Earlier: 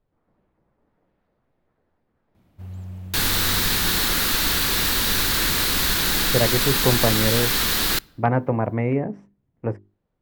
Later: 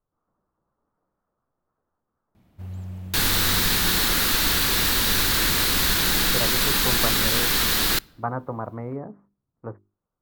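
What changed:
speech: add transistor ladder low-pass 1,400 Hz, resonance 60%
first sound: send +9.0 dB

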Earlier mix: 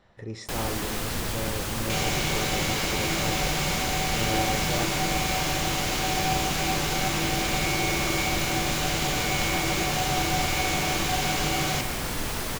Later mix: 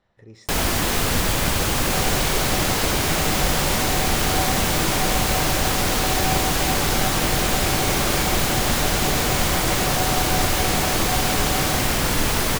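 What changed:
speech −8.5 dB
first sound +9.5 dB
second sound: add graphic EQ with 15 bands 250 Hz −6 dB, 630 Hz +4 dB, 2,500 Hz −7 dB

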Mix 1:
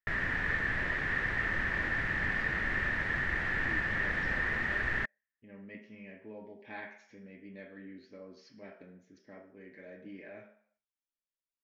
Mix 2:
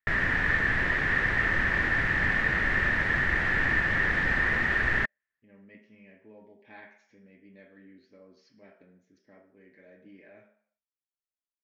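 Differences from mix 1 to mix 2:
speech −5.0 dB
background +6.5 dB

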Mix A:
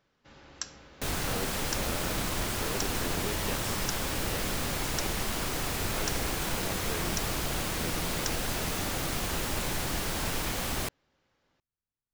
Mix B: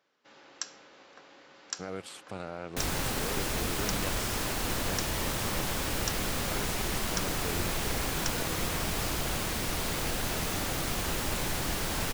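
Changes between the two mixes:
speech: entry +0.55 s
first sound: add high-pass filter 320 Hz 12 dB per octave
second sound: entry +1.75 s

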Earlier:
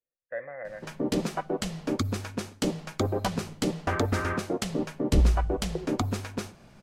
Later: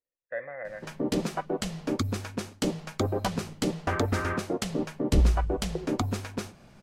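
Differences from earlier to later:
speech: add high-shelf EQ 3,400 Hz +10 dB
background: send off

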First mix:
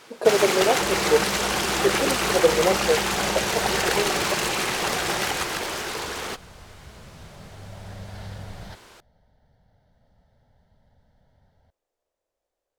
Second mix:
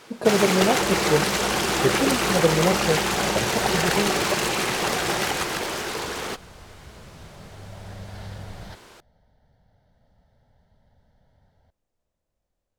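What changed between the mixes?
speech: add low shelf with overshoot 280 Hz +13 dB, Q 1.5
first sound: add low-shelf EQ 480 Hz +4 dB

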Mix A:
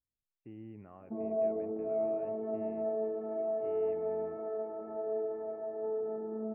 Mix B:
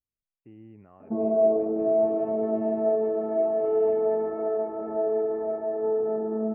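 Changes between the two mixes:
background +12.0 dB
reverb: off

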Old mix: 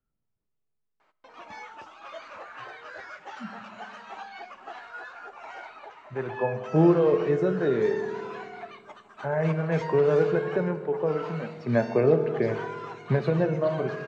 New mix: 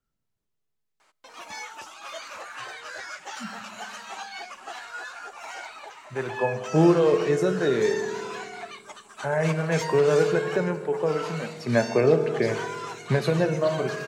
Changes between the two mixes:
background: send −9.5 dB
master: remove head-to-tape spacing loss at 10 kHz 30 dB

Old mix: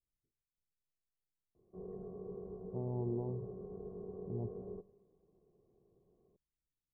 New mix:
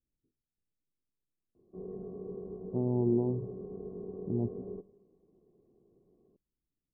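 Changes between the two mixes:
speech +4.5 dB
master: add parametric band 270 Hz +10 dB 1 octave

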